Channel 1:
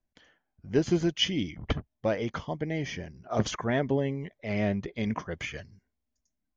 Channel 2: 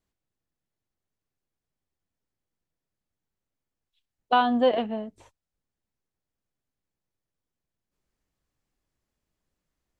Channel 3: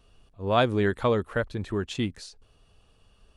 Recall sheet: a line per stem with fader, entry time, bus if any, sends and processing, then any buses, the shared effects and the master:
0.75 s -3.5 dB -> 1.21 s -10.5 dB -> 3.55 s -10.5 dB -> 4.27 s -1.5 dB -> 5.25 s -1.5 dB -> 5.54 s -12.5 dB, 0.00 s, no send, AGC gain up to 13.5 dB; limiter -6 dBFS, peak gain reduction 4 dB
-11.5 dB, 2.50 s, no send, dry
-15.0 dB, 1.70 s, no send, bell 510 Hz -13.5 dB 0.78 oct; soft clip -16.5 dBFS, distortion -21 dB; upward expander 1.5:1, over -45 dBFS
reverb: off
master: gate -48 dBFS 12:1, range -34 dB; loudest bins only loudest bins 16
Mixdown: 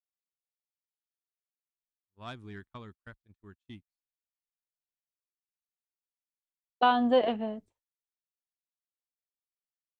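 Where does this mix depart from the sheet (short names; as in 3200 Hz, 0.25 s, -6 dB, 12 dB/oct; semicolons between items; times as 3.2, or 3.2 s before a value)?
stem 1: muted; stem 2 -11.5 dB -> -2.5 dB; master: missing loudest bins only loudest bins 16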